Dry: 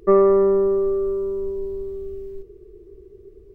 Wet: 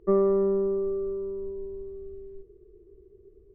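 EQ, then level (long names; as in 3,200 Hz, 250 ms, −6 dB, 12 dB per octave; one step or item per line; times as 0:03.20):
dynamic equaliser 180 Hz, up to +7 dB, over −35 dBFS, Q 1.2
low-pass filter 1,100 Hz 6 dB per octave
−8.5 dB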